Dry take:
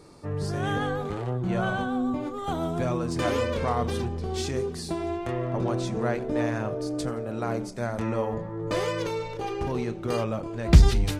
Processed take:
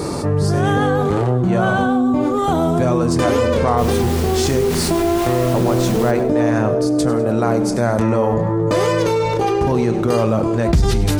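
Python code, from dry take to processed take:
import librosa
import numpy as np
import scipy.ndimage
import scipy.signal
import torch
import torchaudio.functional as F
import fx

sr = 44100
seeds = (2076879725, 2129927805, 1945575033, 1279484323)

y = fx.highpass(x, sr, hz=67.0, slope=6)
y = fx.peak_eq(y, sr, hz=2700.0, db=-5.5, octaves=1.9)
y = fx.dmg_noise_colour(y, sr, seeds[0], colour='pink', level_db=-43.0, at=(3.77, 6.1), fade=0.02)
y = fx.echo_feedback(y, sr, ms=100, feedback_pct=41, wet_db=-16.0)
y = fx.env_flatten(y, sr, amount_pct=70)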